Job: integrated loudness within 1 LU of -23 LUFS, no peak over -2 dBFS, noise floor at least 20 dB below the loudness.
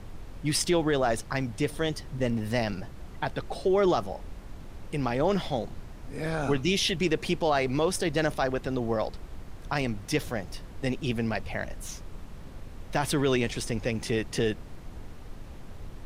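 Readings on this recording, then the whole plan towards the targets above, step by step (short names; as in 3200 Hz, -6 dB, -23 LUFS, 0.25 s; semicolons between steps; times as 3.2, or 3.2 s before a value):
noise floor -44 dBFS; noise floor target -49 dBFS; loudness -29.0 LUFS; peak -13.0 dBFS; loudness target -23.0 LUFS
-> noise print and reduce 6 dB; gain +6 dB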